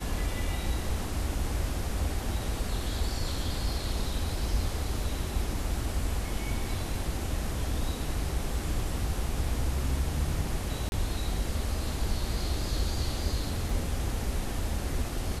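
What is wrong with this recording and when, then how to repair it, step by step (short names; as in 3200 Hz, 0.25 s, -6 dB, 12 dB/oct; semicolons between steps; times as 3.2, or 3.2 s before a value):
10.89–10.92 gap 31 ms
13.7 gap 3.1 ms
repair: interpolate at 10.89, 31 ms; interpolate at 13.7, 3.1 ms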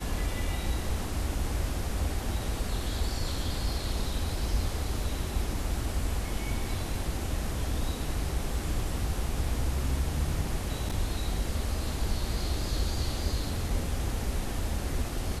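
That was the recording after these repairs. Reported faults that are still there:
none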